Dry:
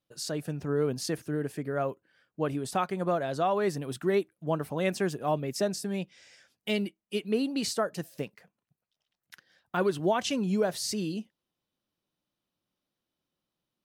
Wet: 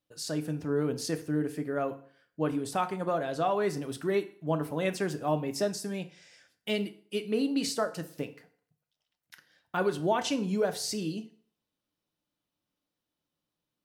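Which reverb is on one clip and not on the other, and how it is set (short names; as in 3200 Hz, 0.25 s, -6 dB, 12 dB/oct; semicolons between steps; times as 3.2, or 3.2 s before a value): FDN reverb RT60 0.51 s, low-frequency decay 0.9×, high-frequency decay 0.85×, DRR 8 dB; gain -1.5 dB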